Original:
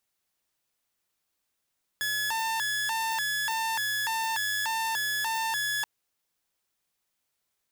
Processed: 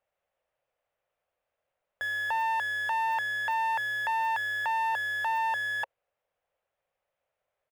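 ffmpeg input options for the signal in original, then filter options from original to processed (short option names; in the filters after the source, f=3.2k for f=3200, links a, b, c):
-f lavfi -i "aevalsrc='0.0596*(2*mod((1298.5*t+401.5/1.7*(0.5-abs(mod(1.7*t,1)-0.5))),1)-1)':d=3.83:s=44100"
-af "firequalizer=gain_entry='entry(120,0);entry(220,-8);entry(330,-7);entry(540,14);entry(930,2);entry(2700,-3);entry(4300,-17);entry(6900,-19)':delay=0.05:min_phase=1"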